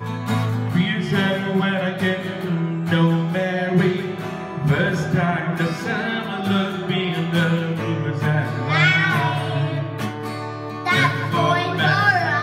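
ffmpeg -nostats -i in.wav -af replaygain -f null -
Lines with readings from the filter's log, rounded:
track_gain = +1.6 dB
track_peak = 0.350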